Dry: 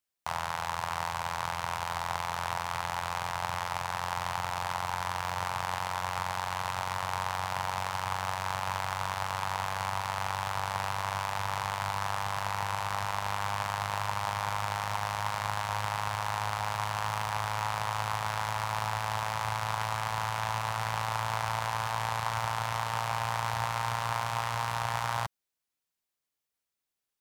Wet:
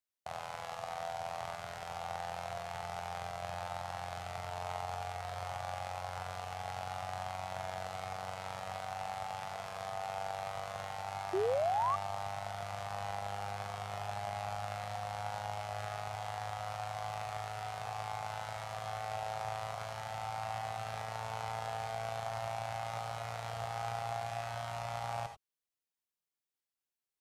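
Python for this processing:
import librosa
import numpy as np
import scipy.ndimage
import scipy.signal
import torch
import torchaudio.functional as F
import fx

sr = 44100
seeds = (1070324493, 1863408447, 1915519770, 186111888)

y = fx.formant_shift(x, sr, semitones=-5)
y = fx.rev_gated(y, sr, seeds[0], gate_ms=110, shape='rising', drr_db=6.0)
y = fx.spec_paint(y, sr, seeds[1], shape='rise', start_s=11.33, length_s=0.63, low_hz=360.0, high_hz=1200.0, level_db=-23.0)
y = F.gain(torch.from_numpy(y), -8.5).numpy()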